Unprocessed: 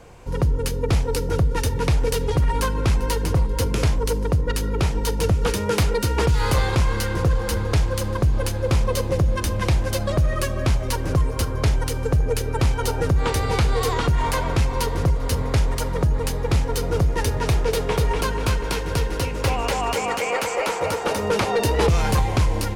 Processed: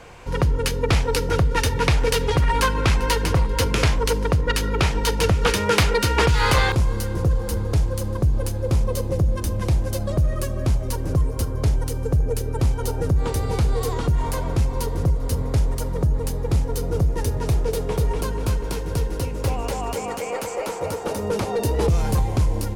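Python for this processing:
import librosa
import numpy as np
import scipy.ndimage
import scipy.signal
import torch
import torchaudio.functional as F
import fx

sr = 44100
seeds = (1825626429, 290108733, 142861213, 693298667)

y = fx.peak_eq(x, sr, hz=2200.0, db=fx.steps((0.0, 7.5), (6.72, -9.5)), octaves=2.9)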